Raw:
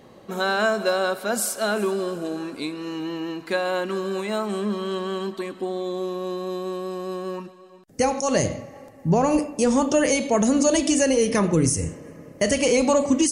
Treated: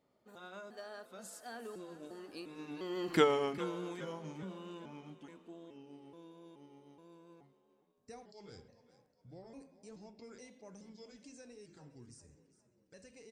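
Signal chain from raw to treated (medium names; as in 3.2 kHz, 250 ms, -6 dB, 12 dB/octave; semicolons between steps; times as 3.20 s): pitch shift switched off and on -3 st, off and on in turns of 388 ms; Doppler pass-by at 3.19 s, 33 m/s, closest 3 m; in parallel at -2 dB: compression, threshold -47 dBFS, peak gain reduction 23.5 dB; on the sum: frequency-shifting echo 405 ms, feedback 46%, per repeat +40 Hz, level -16 dB; trim -1.5 dB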